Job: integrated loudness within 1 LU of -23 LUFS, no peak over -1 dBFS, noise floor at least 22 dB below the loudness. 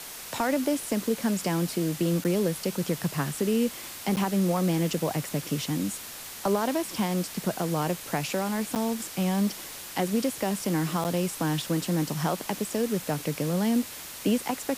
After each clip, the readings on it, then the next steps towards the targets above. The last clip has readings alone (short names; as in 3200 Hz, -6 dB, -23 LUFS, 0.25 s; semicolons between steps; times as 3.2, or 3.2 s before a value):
dropouts 4; longest dropout 8.9 ms; noise floor -41 dBFS; noise floor target -50 dBFS; loudness -28.0 LUFS; peak -14.0 dBFS; loudness target -23.0 LUFS
-> interpolate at 2.24/4.16/8.75/11.04, 8.9 ms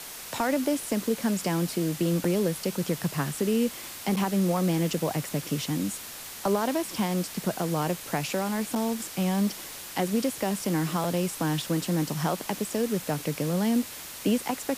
dropouts 0; noise floor -41 dBFS; noise floor target -50 dBFS
-> denoiser 9 dB, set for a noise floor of -41 dBFS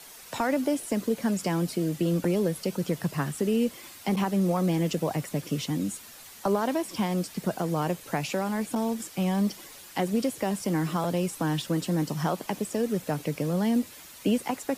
noise floor -47 dBFS; noise floor target -51 dBFS
-> denoiser 6 dB, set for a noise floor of -47 dBFS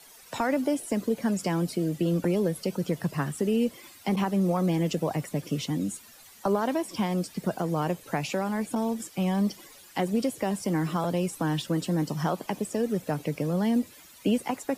noise floor -52 dBFS; loudness -28.5 LUFS; peak -15.0 dBFS; loudness target -23.0 LUFS
-> gain +5.5 dB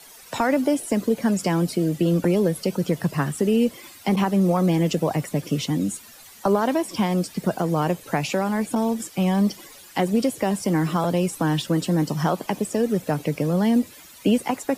loudness -23.0 LUFS; peak -9.5 dBFS; noise floor -46 dBFS